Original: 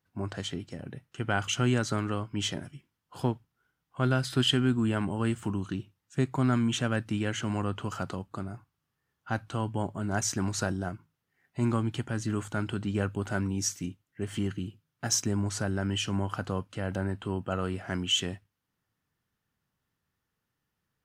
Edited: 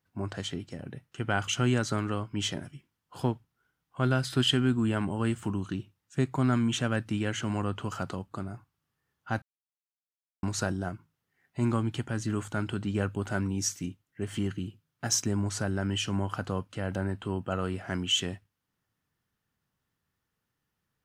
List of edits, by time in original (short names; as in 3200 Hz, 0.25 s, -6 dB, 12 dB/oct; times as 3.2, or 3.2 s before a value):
9.42–10.43 mute